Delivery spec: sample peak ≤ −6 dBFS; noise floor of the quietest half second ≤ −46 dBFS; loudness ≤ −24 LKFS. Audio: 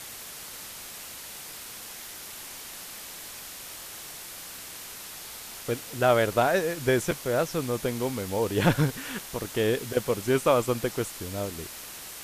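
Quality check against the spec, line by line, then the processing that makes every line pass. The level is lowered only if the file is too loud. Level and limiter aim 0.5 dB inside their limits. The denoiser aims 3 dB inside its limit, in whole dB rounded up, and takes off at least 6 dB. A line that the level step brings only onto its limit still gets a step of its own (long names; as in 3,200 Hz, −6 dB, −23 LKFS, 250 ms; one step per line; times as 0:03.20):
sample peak −8.5 dBFS: in spec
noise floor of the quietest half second −42 dBFS: out of spec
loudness −29.5 LKFS: in spec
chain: broadband denoise 7 dB, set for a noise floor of −42 dBFS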